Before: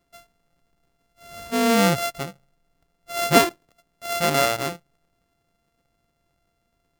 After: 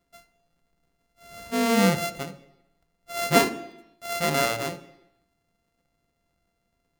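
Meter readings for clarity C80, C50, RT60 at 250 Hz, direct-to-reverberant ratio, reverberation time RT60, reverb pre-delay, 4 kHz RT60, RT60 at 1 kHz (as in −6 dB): 16.5 dB, 15.0 dB, 0.90 s, 9.0 dB, 0.85 s, 3 ms, 0.85 s, 0.85 s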